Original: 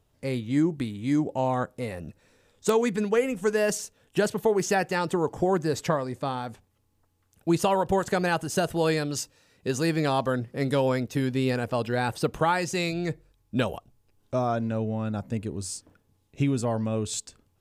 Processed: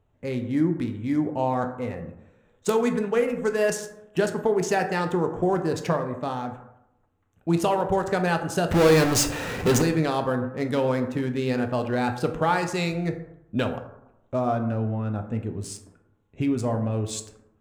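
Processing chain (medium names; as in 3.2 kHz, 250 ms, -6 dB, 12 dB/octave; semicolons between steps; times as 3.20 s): local Wiener filter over 9 samples; 8.71–9.82 s: power-law waveshaper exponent 0.35; plate-style reverb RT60 0.87 s, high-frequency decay 0.4×, DRR 5.5 dB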